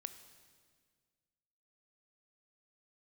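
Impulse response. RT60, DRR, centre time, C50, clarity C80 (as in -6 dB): 1.8 s, 10.0 dB, 13 ms, 11.0 dB, 12.5 dB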